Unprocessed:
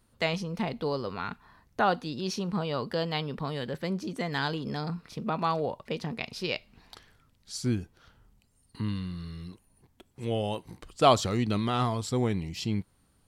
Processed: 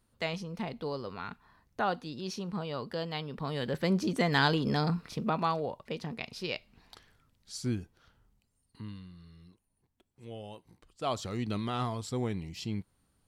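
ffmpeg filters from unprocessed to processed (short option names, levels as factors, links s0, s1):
-af "volume=4.47,afade=t=in:st=3.31:d=0.69:silence=0.316228,afade=t=out:st=4.83:d=0.78:silence=0.375837,afade=t=out:st=7.67:d=1.45:silence=0.316228,afade=t=in:st=11.03:d=0.45:silence=0.375837"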